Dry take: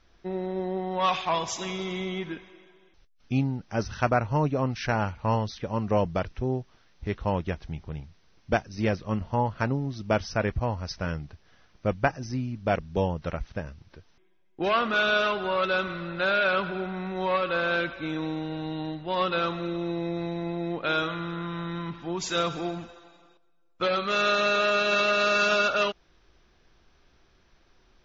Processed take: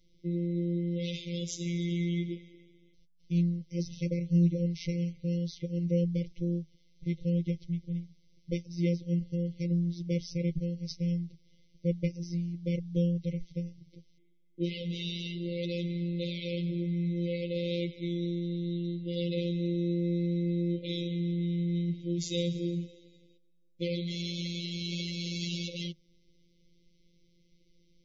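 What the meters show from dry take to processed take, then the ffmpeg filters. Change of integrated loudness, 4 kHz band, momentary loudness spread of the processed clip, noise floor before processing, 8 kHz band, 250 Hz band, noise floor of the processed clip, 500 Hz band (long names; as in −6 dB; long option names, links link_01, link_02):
−5.0 dB, −7.0 dB, 7 LU, −63 dBFS, can't be measured, +1.0 dB, −65 dBFS, −9.0 dB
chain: -af "afftfilt=real='hypot(re,im)*cos(PI*b)':imag='0':win_size=1024:overlap=0.75,afftfilt=real='re*(1-between(b*sr/4096,610,2000))':imag='im*(1-between(b*sr/4096,610,2000))':win_size=4096:overlap=0.75,equalizer=frequency=160:width_type=o:width=0.33:gain=10,equalizer=frequency=630:width_type=o:width=0.33:gain=-10,equalizer=frequency=2500:width_type=o:width=0.33:gain=-10,volume=-1.5dB"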